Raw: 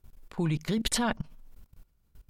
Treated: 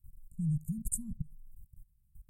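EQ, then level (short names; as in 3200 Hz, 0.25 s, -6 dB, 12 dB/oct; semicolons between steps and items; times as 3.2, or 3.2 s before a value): inverse Chebyshev band-stop 390–2700 Hz, stop band 50 dB; elliptic band-stop 1600–8300 Hz, stop band 40 dB; 0.0 dB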